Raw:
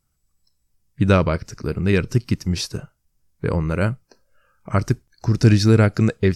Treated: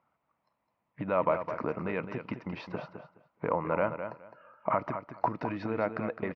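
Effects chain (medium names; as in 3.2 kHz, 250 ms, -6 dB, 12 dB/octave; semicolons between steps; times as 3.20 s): peak limiter -11 dBFS, peak gain reduction 7.5 dB; compression 6:1, threshold -29 dBFS, peak gain reduction 13.5 dB; cabinet simulation 380–2100 Hz, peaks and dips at 390 Hz -9 dB, 640 Hz +4 dB, 960 Hz +7 dB, 1.6 kHz -8 dB; feedback delay 210 ms, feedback 18%, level -9 dB; trim +8.5 dB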